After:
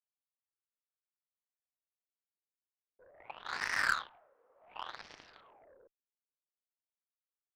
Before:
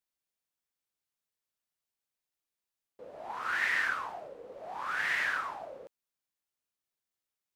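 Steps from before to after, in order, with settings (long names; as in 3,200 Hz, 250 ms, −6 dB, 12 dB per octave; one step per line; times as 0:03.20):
adaptive Wiener filter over 9 samples
LFO wah 0.3 Hz 400–1,400 Hz, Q 2.2
in parallel at −5.5 dB: gain into a clipping stage and back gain 33 dB
on the sum: harmonic generator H 3 −21 dB, 6 −24 dB, 7 −18 dB, 8 −27 dB, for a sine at −20 dBFS
level +4 dB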